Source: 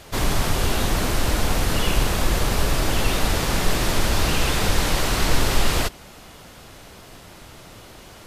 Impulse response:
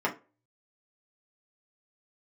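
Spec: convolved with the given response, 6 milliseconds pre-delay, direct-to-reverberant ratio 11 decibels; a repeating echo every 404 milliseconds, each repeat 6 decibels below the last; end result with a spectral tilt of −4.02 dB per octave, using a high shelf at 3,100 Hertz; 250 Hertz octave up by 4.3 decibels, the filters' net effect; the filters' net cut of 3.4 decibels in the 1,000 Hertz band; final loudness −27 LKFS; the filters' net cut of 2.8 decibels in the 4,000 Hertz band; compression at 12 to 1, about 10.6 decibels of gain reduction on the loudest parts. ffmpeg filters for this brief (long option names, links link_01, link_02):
-filter_complex "[0:a]equalizer=frequency=250:width_type=o:gain=6,equalizer=frequency=1000:width_type=o:gain=-5,highshelf=frequency=3100:gain=4.5,equalizer=frequency=4000:width_type=o:gain=-7,acompressor=threshold=-23dB:ratio=12,aecho=1:1:404|808|1212|1616|2020|2424:0.501|0.251|0.125|0.0626|0.0313|0.0157,asplit=2[link_01][link_02];[1:a]atrim=start_sample=2205,adelay=6[link_03];[link_02][link_03]afir=irnorm=-1:irlink=0,volume=-21.5dB[link_04];[link_01][link_04]amix=inputs=2:normalize=0,volume=2dB"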